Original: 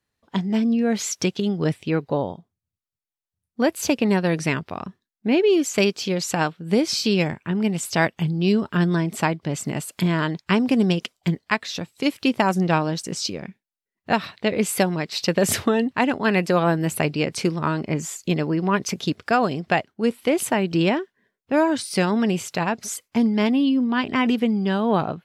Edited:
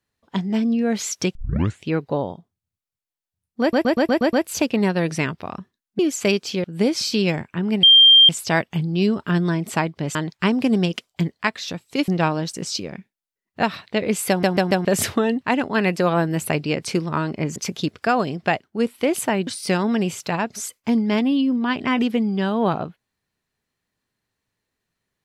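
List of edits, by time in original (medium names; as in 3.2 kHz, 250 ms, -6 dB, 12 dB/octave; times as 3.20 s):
1.35 s: tape start 0.48 s
3.61 s: stutter 0.12 s, 7 plays
5.27–5.52 s: delete
6.17–6.56 s: delete
7.75 s: add tone 3.18 kHz -7 dBFS 0.46 s
9.61–10.22 s: delete
12.15–12.58 s: delete
14.79 s: stutter in place 0.14 s, 4 plays
18.06–18.80 s: delete
20.71–21.75 s: delete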